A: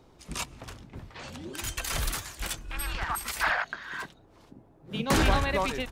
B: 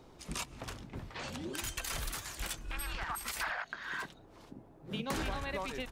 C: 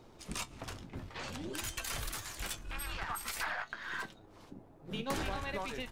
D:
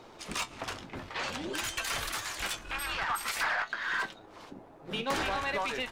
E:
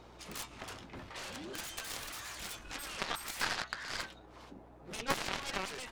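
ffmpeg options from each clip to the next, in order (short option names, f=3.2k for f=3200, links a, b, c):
-af "equalizer=f=77:t=o:w=1.4:g=-3,acompressor=threshold=-37dB:ratio=4,volume=1dB"
-af "aeval=exprs='if(lt(val(0),0),0.708*val(0),val(0))':c=same,flanger=delay=8.6:depth=2.9:regen=64:speed=0.51:shape=triangular,volume=5dB"
-filter_complex "[0:a]asplit=2[a][b];[b]highpass=f=720:p=1,volume=15dB,asoftclip=type=tanh:threshold=-22dB[c];[a][c]amix=inputs=2:normalize=0,lowpass=f=4k:p=1,volume=-6dB,volume=1.5dB"
-af "aeval=exprs='val(0)+0.00178*(sin(2*PI*60*n/s)+sin(2*PI*2*60*n/s)/2+sin(2*PI*3*60*n/s)/3+sin(2*PI*4*60*n/s)/4+sin(2*PI*5*60*n/s)/5)':c=same,aeval=exprs='0.0891*(cos(1*acos(clip(val(0)/0.0891,-1,1)))-cos(1*PI/2))+0.0398*(cos(3*acos(clip(val(0)/0.0891,-1,1)))-cos(3*PI/2))':c=same,volume=5dB"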